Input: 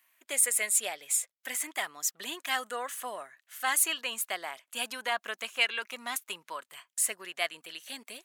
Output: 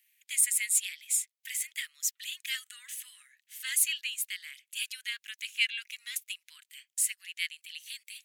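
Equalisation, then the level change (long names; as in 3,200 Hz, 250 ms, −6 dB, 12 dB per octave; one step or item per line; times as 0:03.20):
Butterworth high-pass 2,000 Hz 36 dB per octave
0.0 dB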